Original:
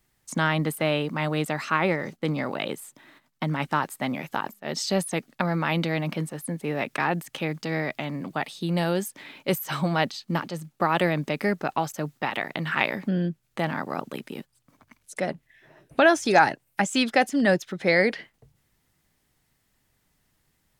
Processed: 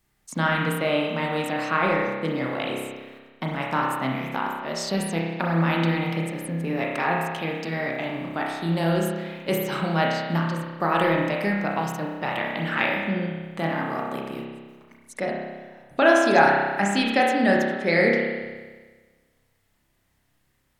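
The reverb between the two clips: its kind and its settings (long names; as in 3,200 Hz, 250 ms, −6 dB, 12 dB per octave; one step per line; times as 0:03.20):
spring reverb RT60 1.4 s, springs 30 ms, chirp 35 ms, DRR −2 dB
level −2 dB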